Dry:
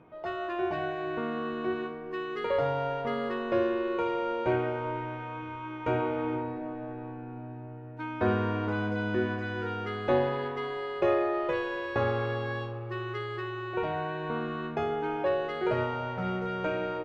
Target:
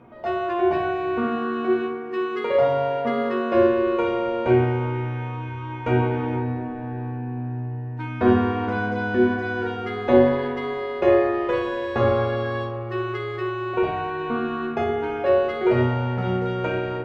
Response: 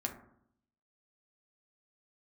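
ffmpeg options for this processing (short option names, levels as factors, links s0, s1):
-filter_complex "[0:a]asettb=1/sr,asplit=3[s0][s1][s2];[s0]atrim=end=1.234[s3];[s1]atrim=start=1.23:end=3.55,asetpts=PTS-STARTPTS,afade=t=in:d=0.004:c=qsin,afade=t=out:st=2.316:d=0.004:c=qsin,highpass=130[s4];[s2]atrim=start=3.546[s5];[s3][s4]acrossfade=d=0.004:c1=hsin:c2=qsin[s6];[s6][s5]acrossfade=d=0.004:c1=qsin:c2=hsin[s7];[1:a]atrim=start_sample=2205[s8];[s7][s8]afir=irnorm=-1:irlink=0,volume=2"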